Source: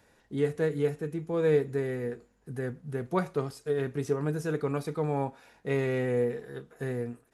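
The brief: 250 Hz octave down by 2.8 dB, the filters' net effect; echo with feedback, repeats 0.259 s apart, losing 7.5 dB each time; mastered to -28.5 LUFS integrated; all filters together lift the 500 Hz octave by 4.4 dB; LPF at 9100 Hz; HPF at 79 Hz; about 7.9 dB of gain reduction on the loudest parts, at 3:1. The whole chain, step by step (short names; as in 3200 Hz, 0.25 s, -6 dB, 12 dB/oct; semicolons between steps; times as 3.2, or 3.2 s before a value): HPF 79 Hz; LPF 9100 Hz; bell 250 Hz -7 dB; bell 500 Hz +7 dB; compressor 3:1, threshold -27 dBFS; feedback echo 0.259 s, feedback 42%, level -7.5 dB; gain +3 dB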